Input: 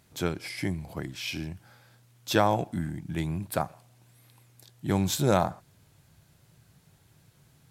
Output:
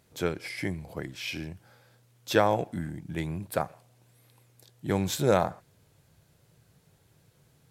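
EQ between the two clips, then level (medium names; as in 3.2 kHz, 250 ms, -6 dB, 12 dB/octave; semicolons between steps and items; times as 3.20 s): dynamic bell 1.9 kHz, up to +5 dB, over -47 dBFS, Q 1.4; peaking EQ 480 Hz +7 dB 0.63 oct; -3.0 dB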